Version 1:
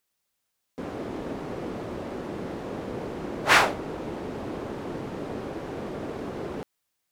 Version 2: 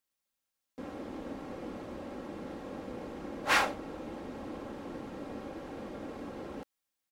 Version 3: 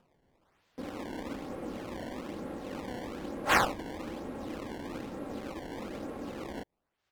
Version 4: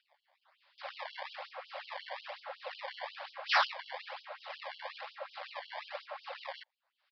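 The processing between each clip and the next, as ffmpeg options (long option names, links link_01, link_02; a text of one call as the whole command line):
ffmpeg -i in.wav -af "aecho=1:1:3.7:0.45,volume=-8.5dB" out.wav
ffmpeg -i in.wav -af "acrusher=samples=20:mix=1:aa=0.000001:lfo=1:lforange=32:lforate=1.1,acompressor=mode=upward:threshold=-59dB:ratio=2.5,aemphasis=mode=reproduction:type=cd,volume=2dB" out.wav
ffmpeg -i in.wav -af "aresample=11025,asoftclip=type=hard:threshold=-27.5dB,aresample=44100,afftfilt=real='re*gte(b*sr/1024,500*pow(2900/500,0.5+0.5*sin(2*PI*5.5*pts/sr)))':imag='im*gte(b*sr/1024,500*pow(2900/500,0.5+0.5*sin(2*PI*5.5*pts/sr)))':win_size=1024:overlap=0.75,volume=5.5dB" out.wav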